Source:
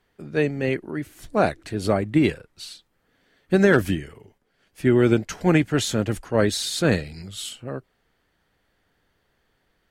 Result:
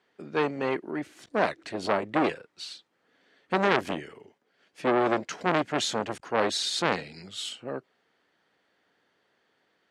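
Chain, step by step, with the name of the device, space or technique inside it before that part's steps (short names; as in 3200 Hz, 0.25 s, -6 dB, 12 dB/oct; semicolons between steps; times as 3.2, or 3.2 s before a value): public-address speaker with an overloaded transformer (core saturation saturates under 1600 Hz; BPF 250–6300 Hz)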